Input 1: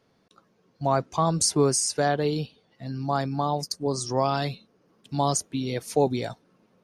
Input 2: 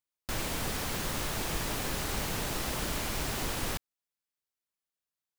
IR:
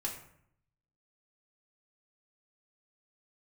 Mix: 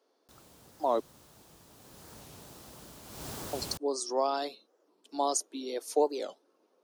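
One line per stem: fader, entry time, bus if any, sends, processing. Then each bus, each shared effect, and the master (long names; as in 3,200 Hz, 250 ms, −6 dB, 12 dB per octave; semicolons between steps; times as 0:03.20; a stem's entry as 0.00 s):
−3.0 dB, 0.00 s, muted 0:01.01–0:03.55, no send, Butterworth high-pass 300 Hz 36 dB per octave
0:01.70 −22 dB → 0:02.09 −15 dB → 0:03.02 −15 dB → 0:03.27 −5 dB, 0.00 s, no send, no processing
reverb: not used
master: high-pass filter 77 Hz; parametric band 2,100 Hz −8.5 dB 1.2 octaves; wow of a warped record 45 rpm, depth 250 cents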